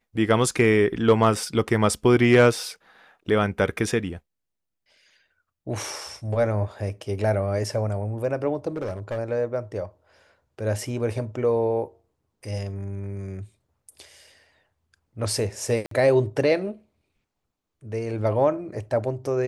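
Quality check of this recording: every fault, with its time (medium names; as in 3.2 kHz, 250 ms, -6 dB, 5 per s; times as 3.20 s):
8.76–9.19 s: clipped -25 dBFS
15.86–15.91 s: dropout 53 ms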